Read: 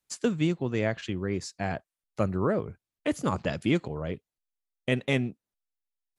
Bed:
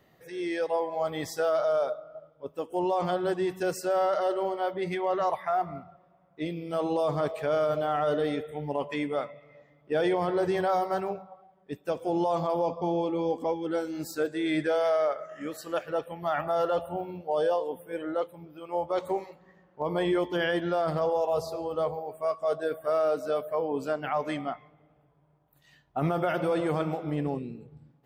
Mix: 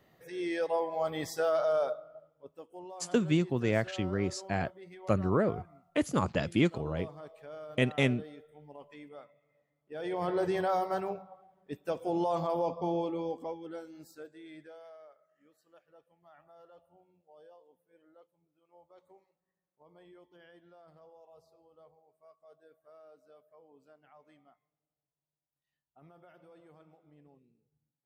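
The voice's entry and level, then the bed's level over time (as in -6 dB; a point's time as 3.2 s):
2.90 s, -1.0 dB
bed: 1.92 s -2.5 dB
2.85 s -19 dB
9.85 s -19 dB
10.26 s -3.5 dB
12.96 s -3.5 dB
15.22 s -30.5 dB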